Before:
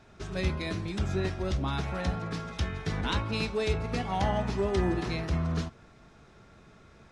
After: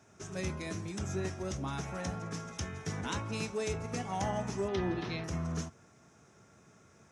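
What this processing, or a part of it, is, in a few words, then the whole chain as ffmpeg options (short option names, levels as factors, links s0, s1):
budget condenser microphone: -filter_complex "[0:a]highpass=f=83:w=0.5412,highpass=f=83:w=1.3066,highshelf=f=5100:t=q:w=3:g=6,asettb=1/sr,asplit=3[s0][s1][s2];[s0]atrim=end=4.684[s3];[s1]atrim=start=4.68:end=5.24,asetpts=PTS-STARTPTS,afade=t=in:d=0.004:c=qsin,afade=t=out:st=0.556:d=0.004:c=qsin,highshelf=f=5500:t=q:w=3:g=-13.5[s4];[s2]atrim=start=5.236[s5];[s3][s4]acrossfade=d=0.004:c1=hsin:c2=qsin[s6];[s6][s5]acrossfade=d=0.004:c1=qsin:c2=hsin,volume=0.562"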